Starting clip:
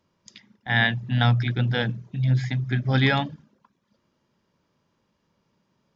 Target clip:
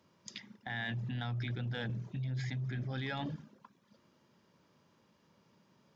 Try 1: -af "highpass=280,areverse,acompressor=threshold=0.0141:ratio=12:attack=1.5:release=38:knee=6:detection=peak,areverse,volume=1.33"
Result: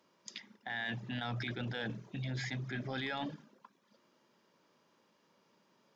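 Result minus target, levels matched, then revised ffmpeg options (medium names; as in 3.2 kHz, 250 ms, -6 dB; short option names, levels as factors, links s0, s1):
125 Hz band -4.0 dB
-af "highpass=97,areverse,acompressor=threshold=0.0141:ratio=12:attack=1.5:release=38:knee=6:detection=peak,areverse,volume=1.33"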